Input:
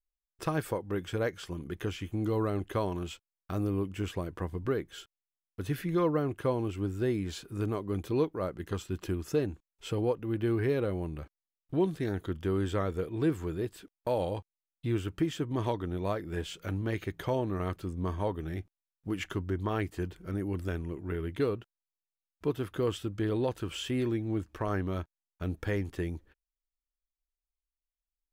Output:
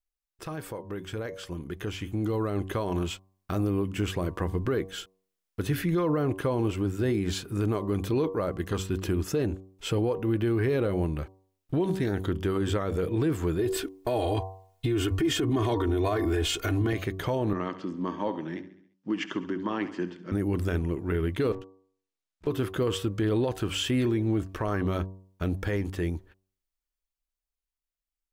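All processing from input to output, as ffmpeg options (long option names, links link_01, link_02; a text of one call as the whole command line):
ffmpeg -i in.wav -filter_complex "[0:a]asettb=1/sr,asplit=3[link_01][link_02][link_03];[link_01]atrim=end=13.594[link_04];[link_02]atrim=start=13.59:end=16.93,asetpts=PTS-STARTPTS,afade=type=in:duration=0.004:curve=qsin,afade=type=out:start_time=3.336:duration=0.004:curve=qsin,acontrast=65,aecho=1:1:2.8:0.99,atrim=end_sample=147294[link_05];[link_03]atrim=start=16.926[link_06];[link_04][link_05]acrossfade=duration=0.004:curve1=hsin:curve2=qsin[link_07];[link_07][link_06]acrossfade=duration=0.004:curve1=qsin:curve2=hsin,asettb=1/sr,asplit=3[link_08][link_09][link_10];[link_08]atrim=end=17.534[link_11];[link_09]atrim=start=17.53:end=20.32,asetpts=PTS-STARTPTS,afade=type=in:duration=0.004:curve=qsin,afade=type=out:start_time=2.786:duration=0.004:curve=qsin,highpass=frequency=200:width=0.5412,highpass=frequency=200:width=1.3066,equalizer=frequency=430:width_type=q:width=4:gain=-9,equalizer=frequency=700:width_type=q:width=4:gain=-9,equalizer=frequency=1400:width_type=q:width=4:gain=-6,equalizer=frequency=2300:width_type=q:width=4:gain=-6,equalizer=frequency=3900:width_type=q:width=4:gain=-9,lowpass=frequency=5300:width=0.5412,lowpass=frequency=5300:width=1.3066,aecho=1:1:68|136|204|272|340:0.178|0.0978|0.0538|0.0296|0.0163,atrim=end_sample=123039[link_12];[link_10]atrim=start=20.316[link_13];[link_11][link_12]acrossfade=duration=0.004:curve1=hsin:curve2=qsin[link_14];[link_14][link_13]acrossfade=duration=0.004:curve1=qsin:curve2=hsin,asettb=1/sr,asplit=3[link_15][link_16][link_17];[link_15]atrim=end=21.524[link_18];[link_16]atrim=start=21.52:end=22.47,asetpts=PTS-STARTPTS,afade=type=in:duration=0.004:curve=qsin,afade=type=out:start_time=0.946:duration=0.004:curve=qsin,lowpass=8400,aeval=exprs='(tanh(447*val(0)+0.75)-tanh(0.75))/447':channel_layout=same[link_19];[link_17]atrim=start=22.466[link_20];[link_18][link_19]acrossfade=duration=0.004:curve1=hsin:curve2=qsin[link_21];[link_21][link_20]acrossfade=duration=0.004:curve1=qsin:curve2=hsin,bandreject=frequency=95.03:width_type=h:width=4,bandreject=frequency=190.06:width_type=h:width=4,bandreject=frequency=285.09:width_type=h:width=4,bandreject=frequency=380.12:width_type=h:width=4,bandreject=frequency=475.15:width_type=h:width=4,bandreject=frequency=570.18:width_type=h:width=4,bandreject=frequency=665.21:width_type=h:width=4,bandreject=frequency=760.24:width_type=h:width=4,bandreject=frequency=855.27:width_type=h:width=4,bandreject=frequency=950.3:width_type=h:width=4,bandreject=frequency=1045.33:width_type=h:width=4,bandreject=frequency=1140.36:width_type=h:width=4,alimiter=level_in=3dB:limit=-24dB:level=0:latency=1:release=46,volume=-3dB,dynaudnorm=framelen=260:gausssize=17:maxgain=8dB" out.wav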